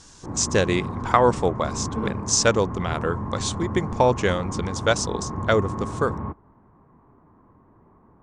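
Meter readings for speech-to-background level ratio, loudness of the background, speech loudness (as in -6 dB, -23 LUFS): 7.5 dB, -31.0 LUFS, -23.5 LUFS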